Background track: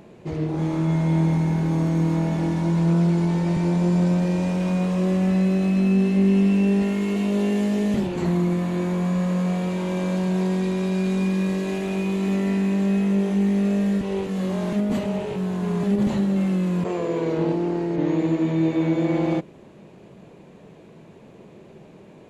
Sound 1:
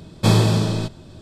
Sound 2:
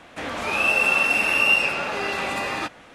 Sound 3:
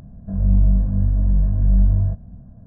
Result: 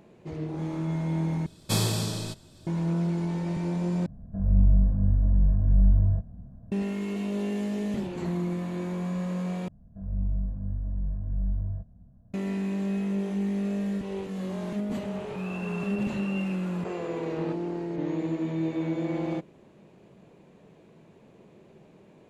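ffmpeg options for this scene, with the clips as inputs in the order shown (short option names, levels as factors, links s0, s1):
-filter_complex "[3:a]asplit=2[s0][s1];[0:a]volume=0.398[s2];[1:a]crystalizer=i=3:c=0[s3];[2:a]lowpass=f=1200:p=1[s4];[s2]asplit=4[s5][s6][s7][s8];[s5]atrim=end=1.464[s9];[s3]atrim=end=1.21,asetpts=PTS-STARTPTS,volume=0.266[s10];[s6]atrim=start=2.666:end=4.064[s11];[s0]atrim=end=2.66,asetpts=PTS-STARTPTS,volume=0.596[s12];[s7]atrim=start=6.716:end=9.684[s13];[s1]atrim=end=2.66,asetpts=PTS-STARTPTS,volume=0.211[s14];[s8]atrim=start=12.336[s15];[s4]atrim=end=2.94,asetpts=PTS-STARTPTS,volume=0.158,afade=t=in:d=0.004:c=hsin,afade=t=out:st=2.936:d=0.004:c=hsin,adelay=14860[s16];[s9][s10]acrossfade=d=0.004:c1=hsin:c2=hsin[s17];[s17][s11]acrossfade=d=0.004:c1=hsin:c2=hsin[s18];[s18][s12]acrossfade=d=0.004:c1=hsin:c2=hsin[s19];[s19][s13]acrossfade=d=0.004:c1=hsin:c2=hsin[s20];[s20][s14]acrossfade=d=0.004:c1=hsin:c2=hsin[s21];[s21][s15]acrossfade=d=0.004:c1=hsin:c2=hsin[s22];[s22][s16]amix=inputs=2:normalize=0"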